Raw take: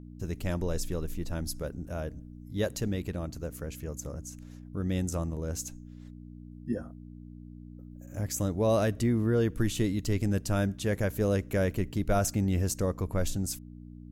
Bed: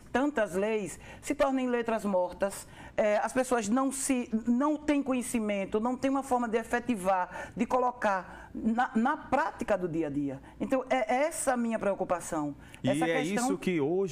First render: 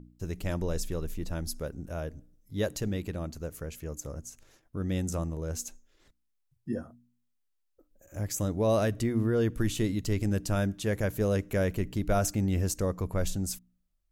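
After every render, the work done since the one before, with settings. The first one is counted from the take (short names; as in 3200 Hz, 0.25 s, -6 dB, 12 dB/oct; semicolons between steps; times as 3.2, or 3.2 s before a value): de-hum 60 Hz, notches 5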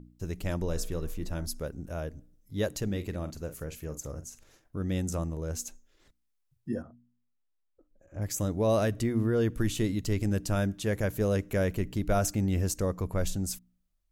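0.65–1.46 de-hum 59.9 Hz, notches 36; 2.85–4.79 doubler 45 ms -11.5 dB; 6.82–8.22 tape spacing loss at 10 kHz 23 dB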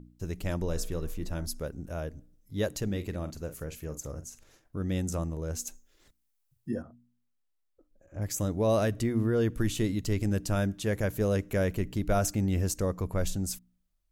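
5.67–6.71 high shelf 7200 Hz +9 dB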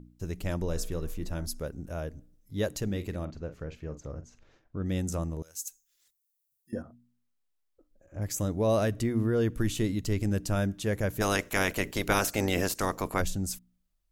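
3.25–4.86 air absorption 190 m; 5.42–6.73 pre-emphasis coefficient 0.97; 11.2–13.2 spectral limiter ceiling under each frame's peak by 23 dB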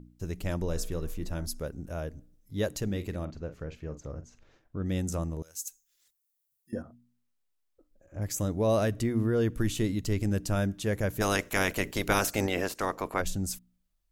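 12.47–13.26 tone controls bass -7 dB, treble -8 dB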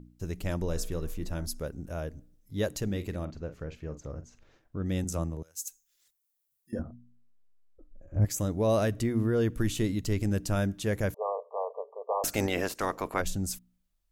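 5.04–5.58 three-band expander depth 70%; 6.79–8.25 tilt -3 dB/oct; 11.14–12.24 brick-wall FIR band-pass 420–1200 Hz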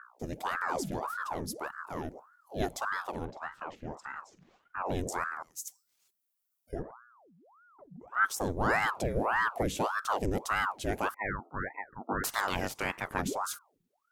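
ring modulator with a swept carrier 810 Hz, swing 80%, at 1.7 Hz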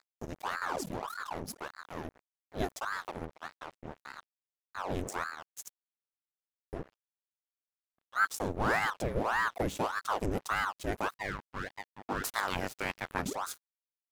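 crossover distortion -41.5 dBFS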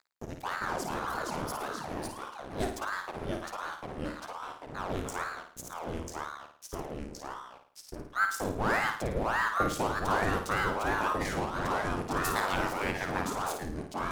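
echoes that change speed 0.37 s, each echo -2 st, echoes 2; flutter echo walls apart 9.3 m, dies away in 0.48 s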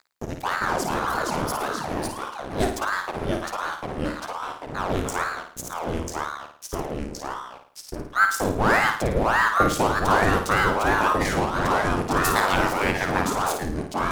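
gain +9 dB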